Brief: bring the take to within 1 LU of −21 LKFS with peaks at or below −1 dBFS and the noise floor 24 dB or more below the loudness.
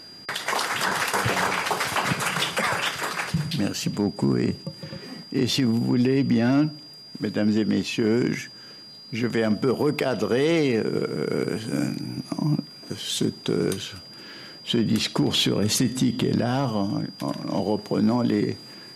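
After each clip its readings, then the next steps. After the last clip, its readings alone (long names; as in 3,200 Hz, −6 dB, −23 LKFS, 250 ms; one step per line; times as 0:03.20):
share of clipped samples 0.3%; peaks flattened at −13.5 dBFS; interfering tone 4,800 Hz; level of the tone −42 dBFS; integrated loudness −24.5 LKFS; sample peak −13.5 dBFS; target loudness −21.0 LKFS
→ clipped peaks rebuilt −13.5 dBFS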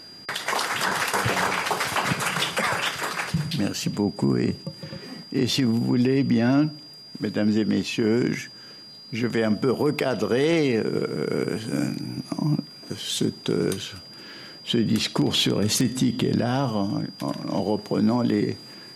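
share of clipped samples 0.0%; interfering tone 4,800 Hz; level of the tone −42 dBFS
→ notch filter 4,800 Hz, Q 30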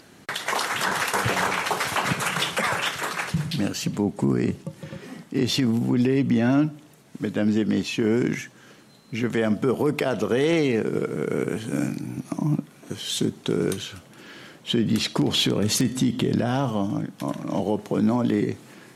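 interfering tone none found; integrated loudness −24.5 LKFS; sample peak −6.5 dBFS; target loudness −21.0 LKFS
→ level +3.5 dB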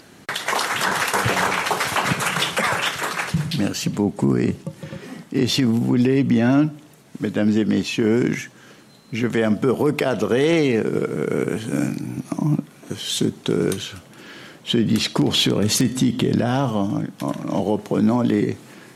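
integrated loudness −21.0 LKFS; sample peak −3.0 dBFS; background noise floor −47 dBFS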